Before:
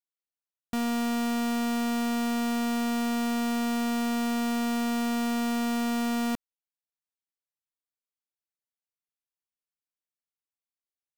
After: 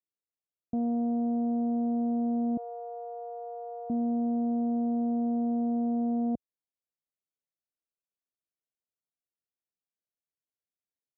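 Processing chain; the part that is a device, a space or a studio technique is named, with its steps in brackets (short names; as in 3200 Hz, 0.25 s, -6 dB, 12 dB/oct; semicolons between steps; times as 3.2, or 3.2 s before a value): 2.57–3.9 steep high-pass 400 Hz 72 dB/oct; HPF 59 Hz; under water (LPF 510 Hz 24 dB/oct; bell 690 Hz +9.5 dB 0.53 oct)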